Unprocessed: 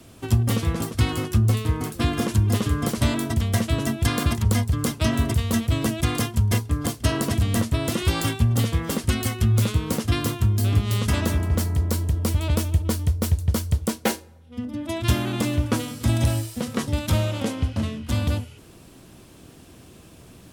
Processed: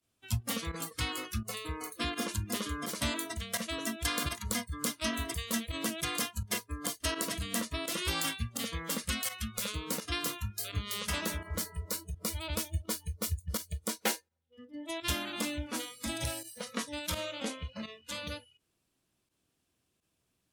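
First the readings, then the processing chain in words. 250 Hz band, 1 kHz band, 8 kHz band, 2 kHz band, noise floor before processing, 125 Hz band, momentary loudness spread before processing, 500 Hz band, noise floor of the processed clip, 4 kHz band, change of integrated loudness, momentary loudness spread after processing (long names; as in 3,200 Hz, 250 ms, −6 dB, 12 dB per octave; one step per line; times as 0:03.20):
−14.0 dB, −8.0 dB, −4.0 dB, −5.5 dB, −48 dBFS, −19.5 dB, 5 LU, −11.0 dB, −80 dBFS, −4.0 dB, −11.5 dB, 6 LU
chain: noise reduction from a noise print of the clip's start 23 dB
fake sidechain pumping 84 BPM, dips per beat 1, −12 dB, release 60 ms
tilt shelving filter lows −4.5 dB
level −7.5 dB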